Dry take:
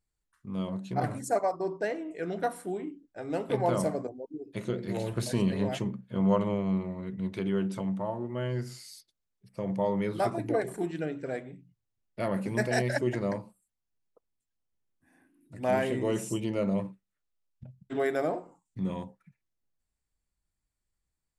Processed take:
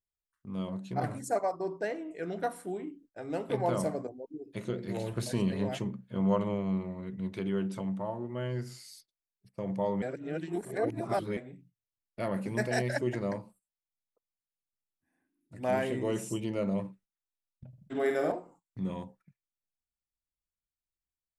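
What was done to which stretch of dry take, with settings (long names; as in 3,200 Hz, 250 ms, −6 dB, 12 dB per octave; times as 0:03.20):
0:10.02–0:11.37: reverse
0:17.68–0:18.32: flutter between parallel walls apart 8.4 metres, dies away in 0.62 s
whole clip: noise gate −56 dBFS, range −12 dB; level −2.5 dB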